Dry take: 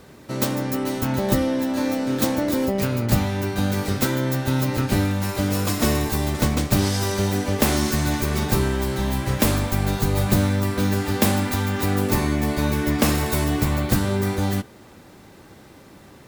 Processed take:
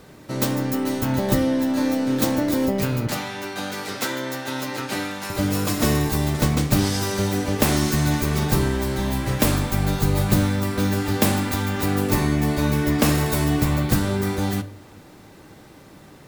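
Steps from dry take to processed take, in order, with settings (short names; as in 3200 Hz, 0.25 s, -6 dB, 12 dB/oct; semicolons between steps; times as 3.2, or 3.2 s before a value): 3.07–5.3 weighting filter A; reverb RT60 0.50 s, pre-delay 6 ms, DRR 12.5 dB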